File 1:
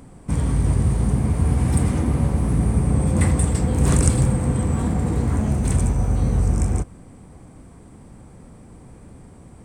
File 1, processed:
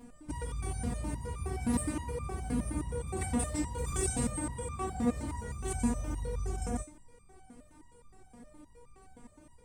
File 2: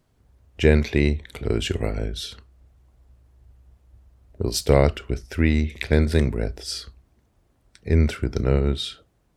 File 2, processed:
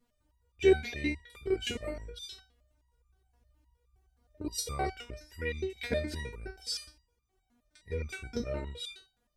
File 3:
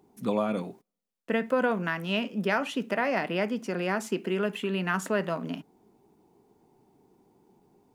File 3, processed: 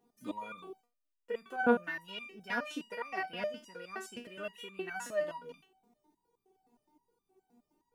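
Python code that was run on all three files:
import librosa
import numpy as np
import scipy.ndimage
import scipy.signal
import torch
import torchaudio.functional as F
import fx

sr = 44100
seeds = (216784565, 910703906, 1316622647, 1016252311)

y = fx.resonator_held(x, sr, hz=9.6, low_hz=240.0, high_hz=1200.0)
y = F.gain(torch.from_numpy(y), 7.5).numpy()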